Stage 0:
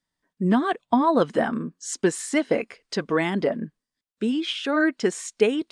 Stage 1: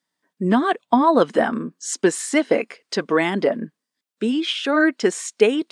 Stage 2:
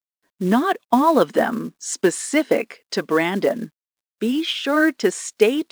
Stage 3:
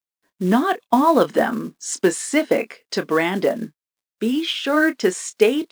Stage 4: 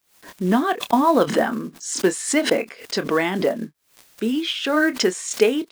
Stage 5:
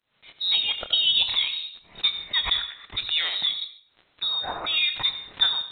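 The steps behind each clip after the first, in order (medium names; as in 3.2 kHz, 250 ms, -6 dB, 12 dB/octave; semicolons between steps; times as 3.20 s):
high-pass 210 Hz 12 dB/octave; trim +4.5 dB
companded quantiser 6-bit
doubling 27 ms -12 dB
swell ahead of each attack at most 120 dB/s; trim -1.5 dB
reverberation RT60 0.50 s, pre-delay 71 ms, DRR 10 dB; frequency inversion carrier 4 kHz; trim -5.5 dB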